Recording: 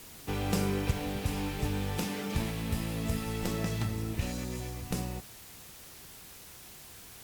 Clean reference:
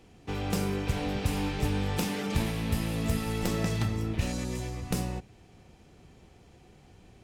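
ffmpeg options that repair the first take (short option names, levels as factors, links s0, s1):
-af "afwtdn=0.0032,asetnsamples=n=441:p=0,asendcmd='0.91 volume volume 3.5dB',volume=1"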